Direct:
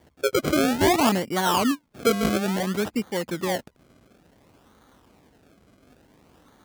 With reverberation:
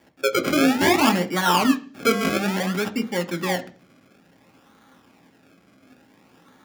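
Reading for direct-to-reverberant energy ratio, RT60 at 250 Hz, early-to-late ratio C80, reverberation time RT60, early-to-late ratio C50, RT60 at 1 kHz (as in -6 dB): 6.0 dB, 0.55 s, 21.5 dB, 0.40 s, 17.0 dB, 0.40 s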